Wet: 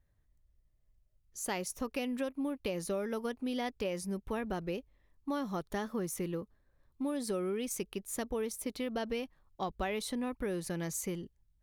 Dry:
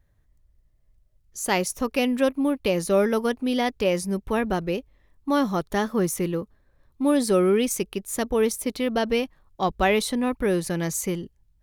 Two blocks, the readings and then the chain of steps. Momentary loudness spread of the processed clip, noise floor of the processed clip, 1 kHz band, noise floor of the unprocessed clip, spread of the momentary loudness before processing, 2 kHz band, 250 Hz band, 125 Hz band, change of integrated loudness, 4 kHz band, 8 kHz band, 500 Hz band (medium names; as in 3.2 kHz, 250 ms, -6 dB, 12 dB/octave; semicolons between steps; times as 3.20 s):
6 LU, -72 dBFS, -13.0 dB, -64 dBFS, 9 LU, -13.0 dB, -12.0 dB, -11.5 dB, -12.5 dB, -12.5 dB, -10.0 dB, -13.5 dB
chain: compression, threshold -23 dBFS, peak gain reduction 8 dB; trim -8.5 dB